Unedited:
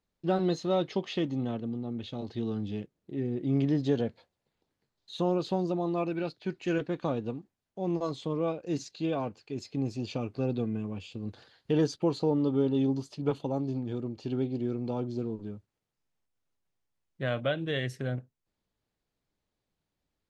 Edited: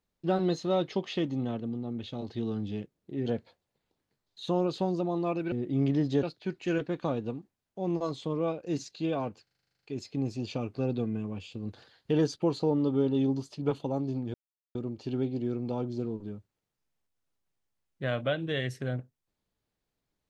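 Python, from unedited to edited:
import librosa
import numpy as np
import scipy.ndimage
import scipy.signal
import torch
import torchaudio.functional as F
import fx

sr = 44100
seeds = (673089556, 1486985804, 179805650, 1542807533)

y = fx.edit(x, sr, fx.move(start_s=3.26, length_s=0.71, to_s=6.23),
    fx.stutter(start_s=9.43, slice_s=0.04, count=11),
    fx.insert_silence(at_s=13.94, length_s=0.41), tone=tone)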